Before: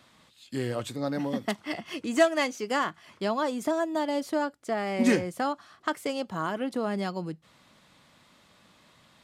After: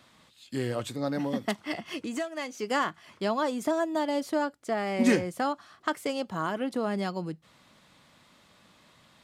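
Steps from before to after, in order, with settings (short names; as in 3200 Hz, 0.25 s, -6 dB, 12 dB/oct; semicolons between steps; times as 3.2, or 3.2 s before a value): 2.01–2.59 compressor 4:1, threshold -32 dBFS, peak gain reduction 14 dB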